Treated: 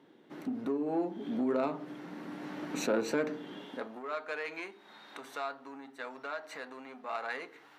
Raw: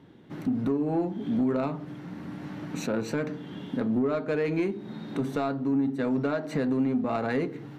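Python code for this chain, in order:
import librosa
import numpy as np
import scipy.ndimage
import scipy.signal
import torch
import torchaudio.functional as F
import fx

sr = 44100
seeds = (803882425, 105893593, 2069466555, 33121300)

y = fx.rider(x, sr, range_db=5, speed_s=2.0)
y = fx.filter_sweep_highpass(y, sr, from_hz=330.0, to_hz=960.0, start_s=3.51, end_s=4.02, q=0.89)
y = y * librosa.db_to_amplitude(-3.0)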